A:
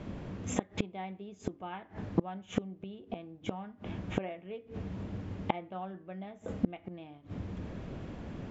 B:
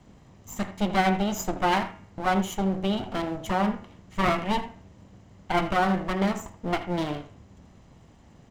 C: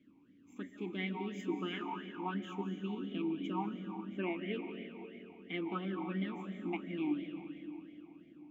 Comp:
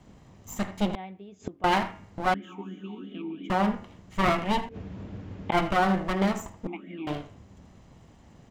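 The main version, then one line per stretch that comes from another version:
B
0.95–1.64 s: from A
2.34–3.50 s: from C
4.69–5.52 s: from A
6.67–7.07 s: from C

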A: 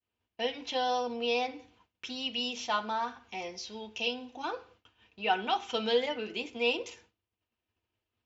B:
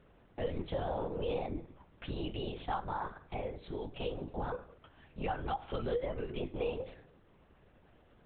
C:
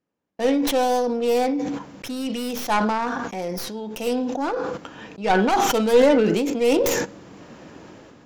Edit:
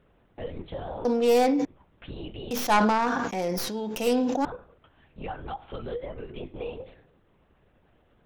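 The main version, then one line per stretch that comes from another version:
B
1.05–1.65 s: from C
2.51–4.45 s: from C
not used: A

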